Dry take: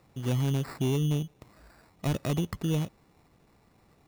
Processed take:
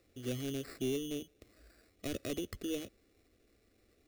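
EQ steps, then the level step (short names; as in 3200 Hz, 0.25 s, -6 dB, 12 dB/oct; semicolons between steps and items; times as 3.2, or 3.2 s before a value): fixed phaser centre 380 Hz, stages 4; -3.5 dB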